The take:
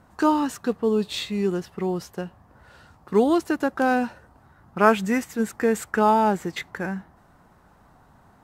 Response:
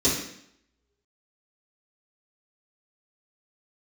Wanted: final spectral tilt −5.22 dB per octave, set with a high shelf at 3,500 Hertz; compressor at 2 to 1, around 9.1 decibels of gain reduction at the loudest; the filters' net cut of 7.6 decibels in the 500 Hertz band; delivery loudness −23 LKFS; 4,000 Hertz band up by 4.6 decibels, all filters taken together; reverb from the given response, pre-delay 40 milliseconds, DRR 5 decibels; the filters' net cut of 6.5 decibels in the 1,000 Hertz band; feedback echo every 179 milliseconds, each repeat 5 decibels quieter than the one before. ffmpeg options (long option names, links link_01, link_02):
-filter_complex "[0:a]equalizer=frequency=500:width_type=o:gain=-8.5,equalizer=frequency=1000:width_type=o:gain=-5.5,highshelf=frequency=3500:gain=-3.5,equalizer=frequency=4000:width_type=o:gain=8,acompressor=threshold=-35dB:ratio=2,aecho=1:1:179|358|537|716|895|1074|1253:0.562|0.315|0.176|0.0988|0.0553|0.031|0.0173,asplit=2[link_01][link_02];[1:a]atrim=start_sample=2205,adelay=40[link_03];[link_02][link_03]afir=irnorm=-1:irlink=0,volume=-18.5dB[link_04];[link_01][link_04]amix=inputs=2:normalize=0,volume=6.5dB"